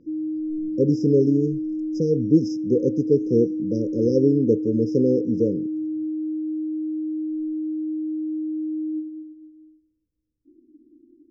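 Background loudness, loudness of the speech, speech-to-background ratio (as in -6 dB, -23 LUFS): -28.0 LUFS, -22.0 LUFS, 6.0 dB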